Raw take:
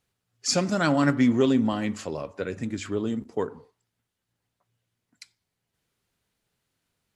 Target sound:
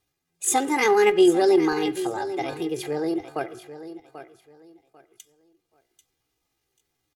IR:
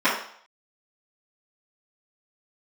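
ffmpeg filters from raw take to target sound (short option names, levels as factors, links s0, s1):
-af "aecho=1:1:3.6:0.76,aecho=1:1:793|1586|2379:0.224|0.056|0.014,asetrate=64194,aresample=44100,atempo=0.686977"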